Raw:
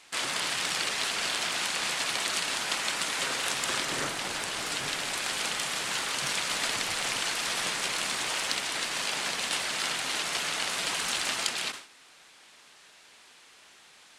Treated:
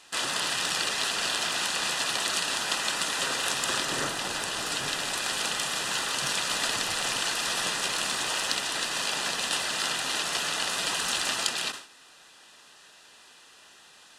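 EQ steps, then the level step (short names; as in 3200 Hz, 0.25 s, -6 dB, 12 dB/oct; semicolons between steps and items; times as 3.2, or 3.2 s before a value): Butterworth band-stop 2200 Hz, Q 7; +2.0 dB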